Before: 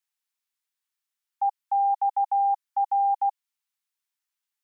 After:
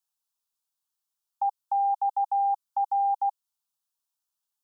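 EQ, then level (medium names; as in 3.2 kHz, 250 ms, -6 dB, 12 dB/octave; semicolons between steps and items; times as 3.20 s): dynamic bell 780 Hz, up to -4 dB, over -34 dBFS; static phaser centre 850 Hz, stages 4; +2.0 dB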